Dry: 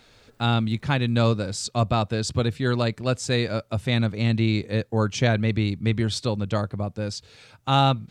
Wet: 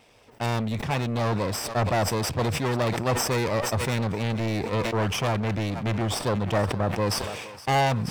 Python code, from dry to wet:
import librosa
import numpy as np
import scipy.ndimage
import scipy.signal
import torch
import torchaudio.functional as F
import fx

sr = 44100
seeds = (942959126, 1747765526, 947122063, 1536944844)

p1 = fx.lower_of_two(x, sr, delay_ms=0.36)
p2 = fx.highpass(p1, sr, hz=46.0, slope=6)
p3 = np.clip(10.0 ** (21.5 / 20.0) * p2, -1.0, 1.0) / 10.0 ** (21.5 / 20.0)
p4 = fx.rider(p3, sr, range_db=10, speed_s=0.5)
p5 = fx.peak_eq(p4, sr, hz=920.0, db=10.0, octaves=1.9)
p6 = p5 + fx.echo_thinned(p5, sr, ms=470, feedback_pct=38, hz=520.0, wet_db=-17.0, dry=0)
p7 = fx.sustainer(p6, sr, db_per_s=38.0)
y = F.gain(torch.from_numpy(p7), -2.5).numpy()